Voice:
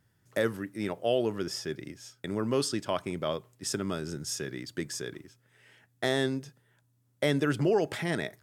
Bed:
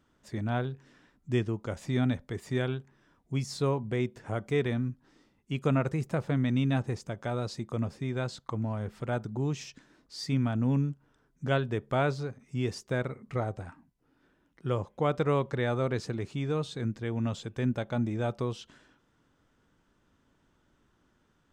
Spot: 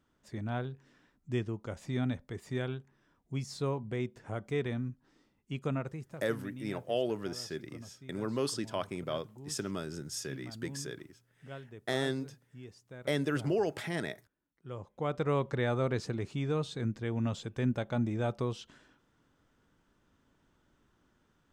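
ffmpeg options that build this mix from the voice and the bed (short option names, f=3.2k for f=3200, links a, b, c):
-filter_complex "[0:a]adelay=5850,volume=-4.5dB[a];[1:a]volume=11.5dB,afade=t=out:st=5.51:d=0.71:silence=0.223872,afade=t=in:st=14.59:d=0.92:silence=0.149624[b];[a][b]amix=inputs=2:normalize=0"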